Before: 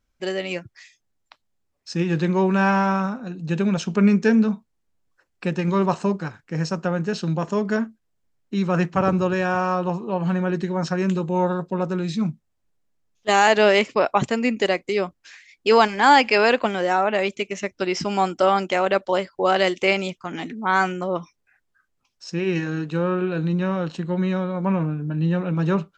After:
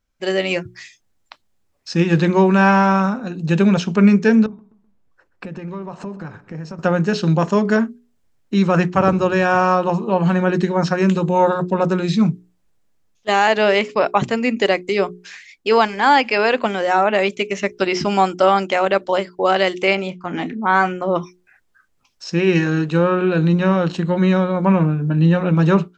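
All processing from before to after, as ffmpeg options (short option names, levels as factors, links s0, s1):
-filter_complex "[0:a]asettb=1/sr,asplit=3[s0][s1][s2];[s0]atrim=end=4.464[s3];[s1]atrim=start=4.46:end=6.79,asetpts=PTS-STARTPTS,afade=t=in:d=0.004:c=qsin,afade=t=out:st=2.326:d=0.004:c=qsin,highshelf=f=2800:g=-12,acompressor=threshold=0.0178:ratio=8:attack=3.2:release=140:knee=1:detection=peak,asplit=2[s4][s5];[s5]adelay=127,lowpass=f=4000:p=1,volume=0.158,asplit=2[s6][s7];[s7]adelay=127,lowpass=f=4000:p=1,volume=0.36,asplit=2[s8][s9];[s9]adelay=127,lowpass=f=4000:p=1,volume=0.36[s10];[s4][s6][s8][s10]amix=inputs=4:normalize=0,atrim=end_sample=102753[s11];[s2]atrim=start=6.786[s12];[s3][s11]acrossfade=d=0.004:c1=hsin:c2=qsin[s13];[s13][s12]acrossfade=d=0.004:c1=qsin:c2=hsin,asettb=1/sr,asplit=3[s14][s15][s16];[s14]atrim=end=19.954[s17];[s15]atrim=start=19.95:end=21.08,asetpts=PTS-STARTPTS,afade=t=in:d=0.004:c=qsin,afade=t=out:st=1.126:d=0.004:c=qsin,lowpass=f=2000:p=1,asplit=2[s18][s19];[s19]adelay=28,volume=0.2[s20];[s18][s20]amix=inputs=2:normalize=0,atrim=end_sample=49833[s21];[s16]atrim=start=21.076[s22];[s17][s21]acrossfade=d=0.004:c1=hsin:c2=qsin[s23];[s23][s22]acrossfade=d=0.004:c1=qsin:c2=hsin,acrossover=split=5700[s24][s25];[s25]acompressor=threshold=0.00355:ratio=4:attack=1:release=60[s26];[s24][s26]amix=inputs=2:normalize=0,bandreject=f=60:t=h:w=6,bandreject=f=120:t=h:w=6,bandreject=f=180:t=h:w=6,bandreject=f=240:t=h:w=6,bandreject=f=300:t=h:w=6,bandreject=f=360:t=h:w=6,bandreject=f=420:t=h:w=6,dynaudnorm=f=170:g=3:m=2.99,volume=0.891"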